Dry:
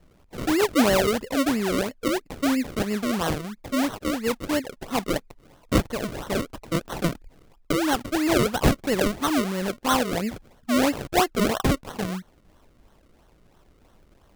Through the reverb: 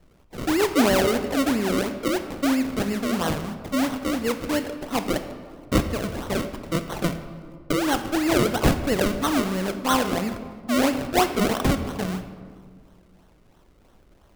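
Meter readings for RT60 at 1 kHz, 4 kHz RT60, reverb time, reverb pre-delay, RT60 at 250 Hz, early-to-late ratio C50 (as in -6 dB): 1.7 s, 1.0 s, 1.8 s, 19 ms, 2.2 s, 10.0 dB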